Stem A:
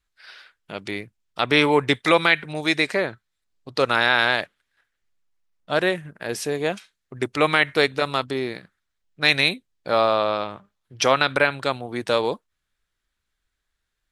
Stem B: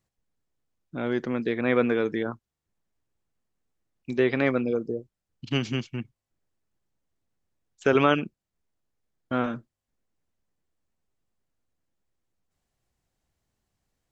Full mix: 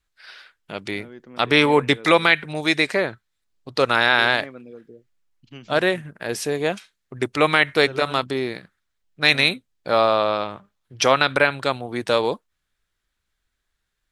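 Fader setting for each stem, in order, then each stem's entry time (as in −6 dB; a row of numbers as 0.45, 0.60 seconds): +1.5, −15.0 decibels; 0.00, 0.00 seconds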